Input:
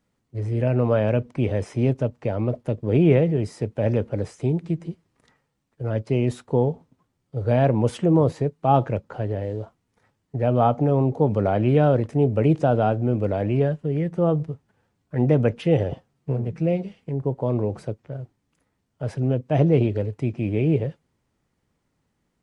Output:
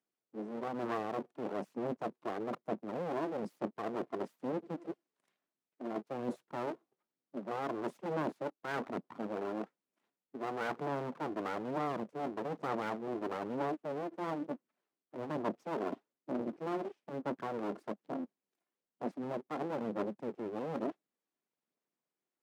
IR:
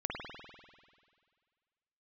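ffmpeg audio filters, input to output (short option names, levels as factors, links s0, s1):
-af "afwtdn=0.0355,aeval=exprs='abs(val(0))':c=same,areverse,acompressor=threshold=0.0316:ratio=6,areverse,aphaser=in_gain=1:out_gain=1:delay=2.9:decay=0.27:speed=1.1:type=sinusoidal,highpass=f=180:w=0.5412,highpass=f=180:w=1.3066"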